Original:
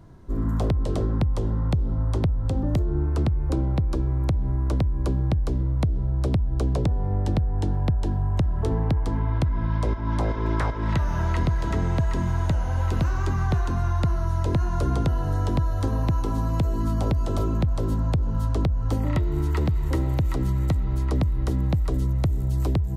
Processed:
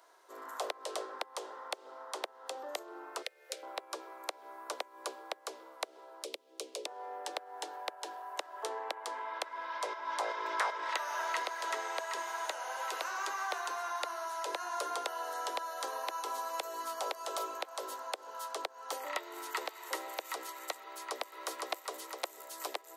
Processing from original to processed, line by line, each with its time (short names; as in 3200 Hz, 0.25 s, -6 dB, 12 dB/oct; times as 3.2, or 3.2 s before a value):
3.22–3.63 EQ curve 140 Hz 0 dB, 300 Hz -19 dB, 500 Hz 0 dB, 1000 Hz -23 dB, 1900 Hz +2 dB
6.23–6.86 band shelf 1100 Hz -14 dB
20.81–21.28 echo throw 0.51 s, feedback 65%, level -1.5 dB
whole clip: Bessel high-pass 810 Hz, order 8; high shelf 5500 Hz +5 dB